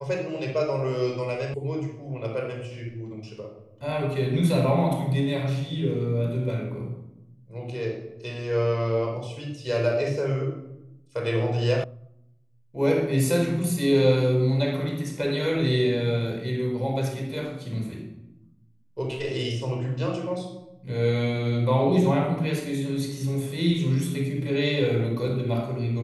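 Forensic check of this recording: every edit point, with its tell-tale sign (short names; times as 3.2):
1.54 sound cut off
11.84 sound cut off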